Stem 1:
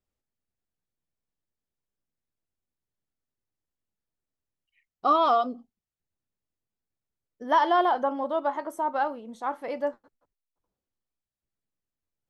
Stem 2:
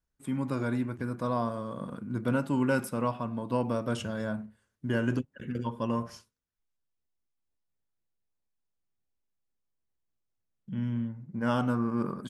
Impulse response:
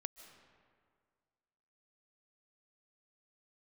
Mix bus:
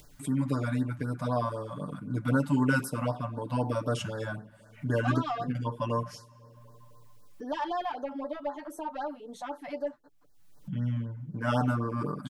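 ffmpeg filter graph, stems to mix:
-filter_complex "[0:a]equalizer=frequency=1100:width_type=o:width=0.77:gain=-4,acompressor=threshold=-26dB:ratio=2.5,asoftclip=type=tanh:threshold=-24dB,volume=-4dB[link_01];[1:a]volume=-1dB,asplit=2[link_02][link_03];[link_03]volume=-14dB[link_04];[2:a]atrim=start_sample=2205[link_05];[link_04][link_05]afir=irnorm=-1:irlink=0[link_06];[link_01][link_02][link_06]amix=inputs=3:normalize=0,aecho=1:1:6.8:0.77,acompressor=mode=upward:threshold=-34dB:ratio=2.5,afftfilt=real='re*(1-between(b*sr/1024,350*pow(2800/350,0.5+0.5*sin(2*PI*3.9*pts/sr))/1.41,350*pow(2800/350,0.5+0.5*sin(2*PI*3.9*pts/sr))*1.41))':imag='im*(1-between(b*sr/1024,350*pow(2800/350,0.5+0.5*sin(2*PI*3.9*pts/sr))/1.41,350*pow(2800/350,0.5+0.5*sin(2*PI*3.9*pts/sr))*1.41))':win_size=1024:overlap=0.75"

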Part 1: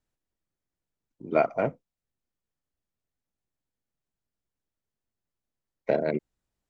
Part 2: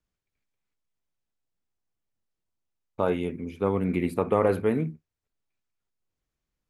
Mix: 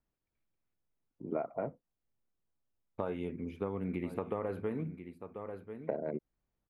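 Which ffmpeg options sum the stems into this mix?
ffmpeg -i stem1.wav -i stem2.wav -filter_complex "[0:a]lowpass=1200,volume=-2dB[link_01];[1:a]equalizer=frequency=8400:width=0.49:gain=-8.5,volume=-4.5dB,asplit=2[link_02][link_03];[link_03]volume=-16.5dB,aecho=0:1:1038:1[link_04];[link_01][link_02][link_04]amix=inputs=3:normalize=0,acompressor=threshold=-32dB:ratio=6" out.wav

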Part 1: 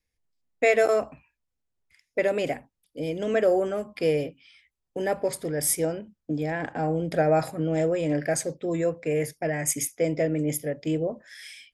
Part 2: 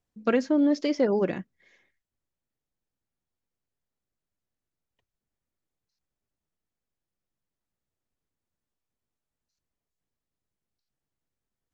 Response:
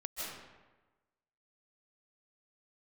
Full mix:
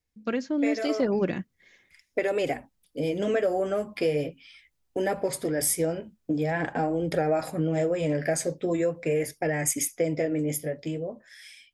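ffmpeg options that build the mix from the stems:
-filter_complex "[0:a]flanger=delay=2.2:depth=10:regen=-40:speed=0.42:shape=sinusoidal,acompressor=threshold=-31dB:ratio=3,volume=-1dB[link_01];[1:a]equalizer=frequency=710:width_type=o:width=2.7:gain=-6,volume=-1.5dB[link_02];[link_01][link_02]amix=inputs=2:normalize=0,dynaudnorm=framelen=190:gausssize=13:maxgain=8.5dB"

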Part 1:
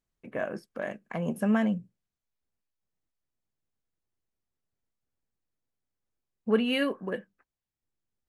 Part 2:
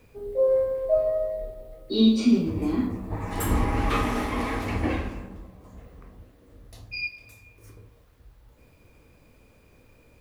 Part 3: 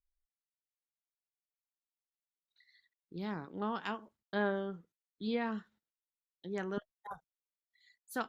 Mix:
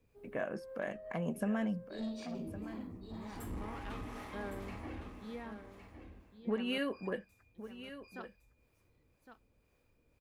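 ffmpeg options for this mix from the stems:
ffmpeg -i stem1.wav -i stem2.wav -i stem3.wav -filter_complex "[0:a]acompressor=threshold=-27dB:ratio=6,volume=-4dB,asplit=3[link_01][link_02][link_03];[link_02]volume=-13dB[link_04];[1:a]asoftclip=type=tanh:threshold=-20dB,acrossover=split=490[link_05][link_06];[link_05]aeval=exprs='val(0)*(1-0.5/2+0.5/2*cos(2*PI*2*n/s))':channel_layout=same[link_07];[link_06]aeval=exprs='val(0)*(1-0.5/2-0.5/2*cos(2*PI*2*n/s))':channel_layout=same[link_08];[link_07][link_08]amix=inputs=2:normalize=0,volume=-15dB,asplit=2[link_09][link_10];[link_10]volume=-9dB[link_11];[2:a]equalizer=frequency=11000:width_type=o:width=1.7:gain=-10,volume=-11dB,asplit=2[link_12][link_13];[link_13]volume=-10dB[link_14];[link_03]apad=whole_len=449961[link_15];[link_09][link_15]sidechaincompress=threshold=-44dB:ratio=8:attack=16:release=319[link_16];[link_04][link_11][link_14]amix=inputs=3:normalize=0,aecho=0:1:1111:1[link_17];[link_01][link_16][link_12][link_17]amix=inputs=4:normalize=0" out.wav

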